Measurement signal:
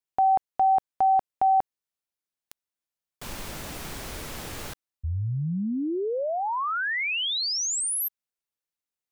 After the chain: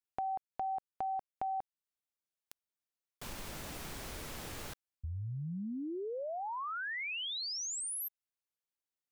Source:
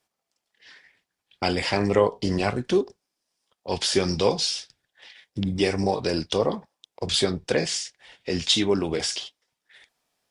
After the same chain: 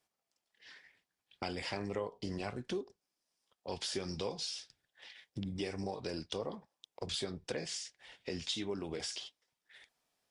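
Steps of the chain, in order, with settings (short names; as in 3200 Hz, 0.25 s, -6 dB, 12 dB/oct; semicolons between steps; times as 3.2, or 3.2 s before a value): compressor 2.5:1, threshold -34 dBFS; gain -6 dB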